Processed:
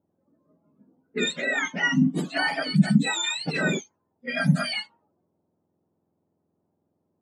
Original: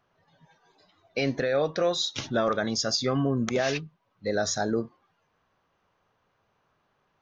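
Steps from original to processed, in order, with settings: spectrum mirrored in octaves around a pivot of 1000 Hz; low-pass opened by the level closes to 440 Hz, open at -23.5 dBFS; gain +3 dB

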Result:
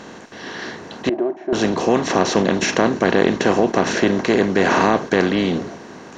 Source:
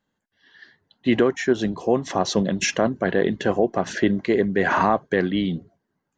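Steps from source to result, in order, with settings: per-bin compression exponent 0.4; 1.09–1.53 double band-pass 480 Hz, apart 0.77 oct; gain -1.5 dB

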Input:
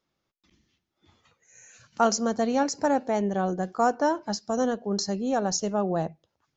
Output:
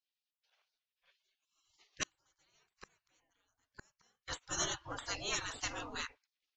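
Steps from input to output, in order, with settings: low-pass opened by the level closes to 1500 Hz, open at -19.5 dBFS; spectral gate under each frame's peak -30 dB weak; 2.03–4.28 flipped gate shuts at -46 dBFS, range -39 dB; gain +11.5 dB

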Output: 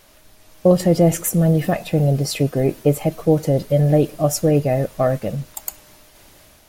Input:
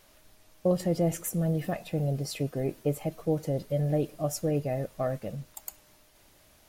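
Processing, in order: AGC gain up to 4 dB; gain +8 dB

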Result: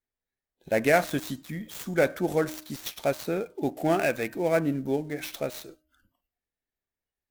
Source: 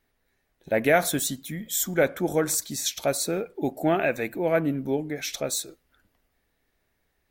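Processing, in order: switching dead time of 0.067 ms; de-hum 309.1 Hz, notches 6; spectral noise reduction 19 dB; gain -1 dB

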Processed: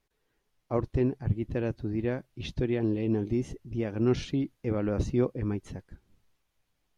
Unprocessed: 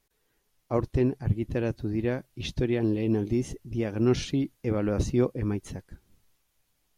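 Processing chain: high shelf 6200 Hz -11.5 dB; gain -2 dB

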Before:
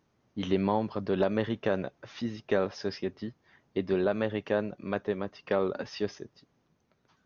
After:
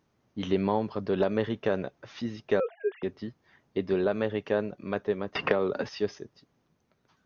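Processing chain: 2.6–3.03 sine-wave speech; dynamic EQ 430 Hz, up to +4 dB, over -42 dBFS, Q 6.9; 5.35–5.89 three-band squash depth 100%

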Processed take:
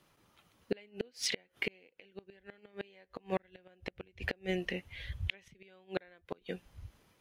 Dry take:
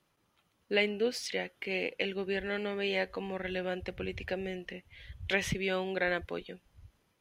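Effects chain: flipped gate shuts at -25 dBFS, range -34 dB; gain +6 dB

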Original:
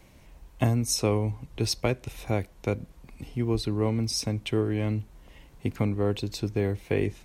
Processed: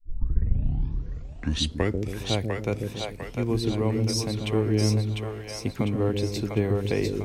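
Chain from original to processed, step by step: tape start at the beginning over 2.25 s; split-band echo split 470 Hz, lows 0.14 s, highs 0.7 s, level -3 dB

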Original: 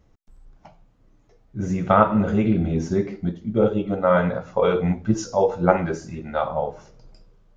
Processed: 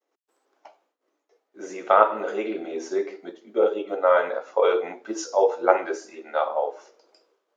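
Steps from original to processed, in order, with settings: expander -50 dBFS; steep high-pass 340 Hz 36 dB/oct

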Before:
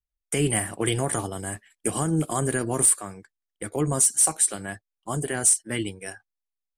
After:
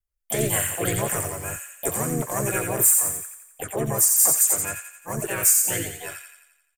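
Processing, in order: fixed phaser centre 940 Hz, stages 6; harmoniser -3 st -3 dB, +7 st -3 dB; thin delay 87 ms, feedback 53%, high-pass 1900 Hz, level -3 dB

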